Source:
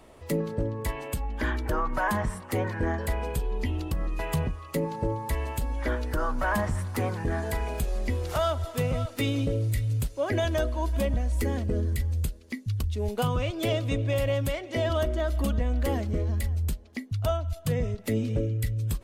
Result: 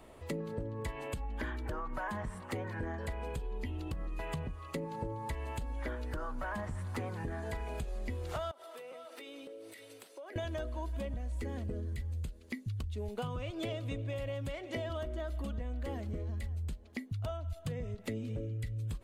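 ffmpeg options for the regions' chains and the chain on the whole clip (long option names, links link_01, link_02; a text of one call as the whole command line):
ffmpeg -i in.wav -filter_complex "[0:a]asettb=1/sr,asplit=3[link_01][link_02][link_03];[link_01]atrim=end=8.514[link_04];[link_02]atrim=start=8.51:end=10.36,asetpts=PTS-STARTPTS,afade=type=in:duration=0.004:curve=qsin,afade=type=out:start_time=1.846:duration=0.004:curve=qsin,highpass=frequency=350:width=0.5412,highpass=frequency=350:width=1.3066,bandreject=frequency=6900:width=8.3,acompressor=threshold=-42dB:ratio=10:attack=3.2:release=140:knee=1:detection=peak[link_05];[link_03]atrim=start=10.356[link_06];[link_04][link_05]acrossfade=duration=0.004:curve1=hsin:curve2=qsin[link_07];[link_07][link_06]acrossfade=duration=0.004:curve1=qsin:curve2=hsin,acrossover=split=8100[link_08][link_09];[link_09]acompressor=threshold=-56dB:ratio=4:attack=1:release=60[link_10];[link_08][link_10]amix=inputs=2:normalize=0,equalizer=frequency=5500:width=2.7:gain=-5,acompressor=threshold=-32dB:ratio=10,volume=-2.5dB" out.wav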